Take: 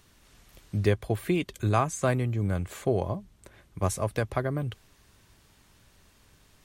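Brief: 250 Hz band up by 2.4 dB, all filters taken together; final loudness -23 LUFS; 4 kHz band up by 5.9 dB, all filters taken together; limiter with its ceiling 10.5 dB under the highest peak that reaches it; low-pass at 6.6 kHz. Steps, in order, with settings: low-pass 6.6 kHz; peaking EQ 250 Hz +3.5 dB; peaking EQ 4 kHz +8 dB; trim +8 dB; peak limiter -10.5 dBFS

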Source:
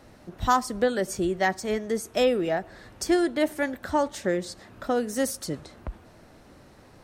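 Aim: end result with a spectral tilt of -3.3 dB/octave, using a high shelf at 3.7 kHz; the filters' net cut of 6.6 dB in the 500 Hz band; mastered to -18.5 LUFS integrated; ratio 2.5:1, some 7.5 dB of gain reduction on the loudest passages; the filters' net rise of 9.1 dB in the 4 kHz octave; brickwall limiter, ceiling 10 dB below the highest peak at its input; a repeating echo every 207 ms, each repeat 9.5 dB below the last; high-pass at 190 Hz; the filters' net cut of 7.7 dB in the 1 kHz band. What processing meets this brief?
high-pass 190 Hz; peaking EQ 500 Hz -6 dB; peaking EQ 1 kHz -9 dB; treble shelf 3.7 kHz +8.5 dB; peaking EQ 4 kHz +6.5 dB; compression 2.5:1, threshold -31 dBFS; peak limiter -26.5 dBFS; feedback delay 207 ms, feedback 33%, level -9.5 dB; trim +17.5 dB

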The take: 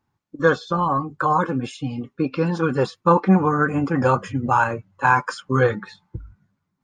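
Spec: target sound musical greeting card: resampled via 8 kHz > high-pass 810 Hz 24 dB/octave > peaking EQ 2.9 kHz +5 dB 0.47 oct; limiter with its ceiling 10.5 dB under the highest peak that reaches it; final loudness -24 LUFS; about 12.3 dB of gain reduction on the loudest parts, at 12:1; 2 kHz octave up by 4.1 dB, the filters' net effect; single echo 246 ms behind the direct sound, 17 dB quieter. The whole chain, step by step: peaking EQ 2 kHz +5.5 dB; compression 12:1, threshold -22 dBFS; peak limiter -21 dBFS; delay 246 ms -17 dB; resampled via 8 kHz; high-pass 810 Hz 24 dB/octave; peaking EQ 2.9 kHz +5 dB 0.47 oct; trim +11.5 dB

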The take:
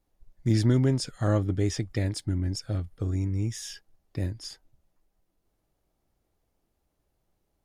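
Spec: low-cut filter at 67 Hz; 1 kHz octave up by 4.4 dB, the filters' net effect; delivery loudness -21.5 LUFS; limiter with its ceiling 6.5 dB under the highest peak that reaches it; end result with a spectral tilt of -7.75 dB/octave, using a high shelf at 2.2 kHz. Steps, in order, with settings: high-pass 67 Hz; peaking EQ 1 kHz +7.5 dB; treble shelf 2.2 kHz -6.5 dB; trim +9 dB; peak limiter -8.5 dBFS

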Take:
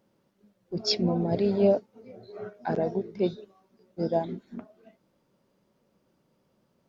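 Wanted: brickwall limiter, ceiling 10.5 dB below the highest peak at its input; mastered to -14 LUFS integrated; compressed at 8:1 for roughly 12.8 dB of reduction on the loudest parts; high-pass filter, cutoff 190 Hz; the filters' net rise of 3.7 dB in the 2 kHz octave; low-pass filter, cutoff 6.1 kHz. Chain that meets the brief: high-pass 190 Hz; low-pass 6.1 kHz; peaking EQ 2 kHz +5 dB; compression 8:1, threshold -30 dBFS; trim +28 dB; peak limiter -3 dBFS

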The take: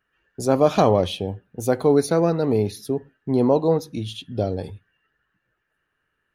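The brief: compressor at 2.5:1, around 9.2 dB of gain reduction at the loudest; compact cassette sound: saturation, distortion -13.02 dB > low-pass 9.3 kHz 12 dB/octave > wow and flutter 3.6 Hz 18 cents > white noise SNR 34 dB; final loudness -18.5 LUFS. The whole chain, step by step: compression 2.5:1, threshold -26 dBFS; saturation -21.5 dBFS; low-pass 9.3 kHz 12 dB/octave; wow and flutter 3.6 Hz 18 cents; white noise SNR 34 dB; trim +13 dB

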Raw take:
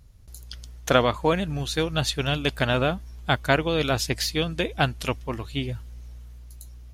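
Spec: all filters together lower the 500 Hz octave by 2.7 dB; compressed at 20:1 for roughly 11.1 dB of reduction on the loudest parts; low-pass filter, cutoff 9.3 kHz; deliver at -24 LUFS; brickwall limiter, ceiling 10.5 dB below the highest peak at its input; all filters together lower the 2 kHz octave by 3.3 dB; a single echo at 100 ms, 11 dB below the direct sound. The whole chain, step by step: low-pass 9.3 kHz; peaking EQ 500 Hz -3 dB; peaking EQ 2 kHz -4.5 dB; compression 20:1, threshold -27 dBFS; peak limiter -25.5 dBFS; delay 100 ms -11 dB; trim +12.5 dB

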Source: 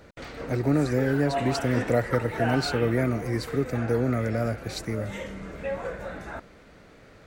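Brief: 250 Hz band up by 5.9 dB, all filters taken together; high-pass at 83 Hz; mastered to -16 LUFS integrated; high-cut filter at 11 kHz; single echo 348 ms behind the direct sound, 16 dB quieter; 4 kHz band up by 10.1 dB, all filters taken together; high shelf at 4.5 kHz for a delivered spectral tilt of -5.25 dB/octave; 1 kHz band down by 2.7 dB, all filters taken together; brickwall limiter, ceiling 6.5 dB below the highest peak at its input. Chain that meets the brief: high-pass 83 Hz; low-pass 11 kHz; peaking EQ 250 Hz +7 dB; peaking EQ 1 kHz -6 dB; peaking EQ 4 kHz +8 dB; treble shelf 4.5 kHz +7 dB; peak limiter -14.5 dBFS; delay 348 ms -16 dB; trim +9.5 dB

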